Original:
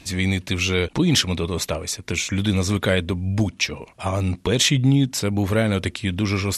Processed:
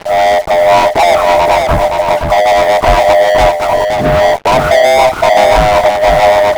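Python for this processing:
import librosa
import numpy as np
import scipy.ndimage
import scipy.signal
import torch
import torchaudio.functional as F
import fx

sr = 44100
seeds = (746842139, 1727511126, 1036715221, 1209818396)

p1 = fx.band_swap(x, sr, width_hz=500)
p2 = scipy.signal.sosfilt(scipy.signal.butter(4, 1100.0, 'lowpass', fs=sr, output='sos'), p1)
p3 = fx.leveller(p2, sr, passes=5)
p4 = fx.fuzz(p3, sr, gain_db=38.0, gate_db=-40.0)
p5 = p3 + (p4 * librosa.db_to_amplitude(-10.5))
p6 = p5 + 10.0 ** (-4.5 / 20.0) * np.pad(p5, (int(520 * sr / 1000.0), 0))[:len(p5)]
y = p6 * librosa.db_to_amplitude(1.0)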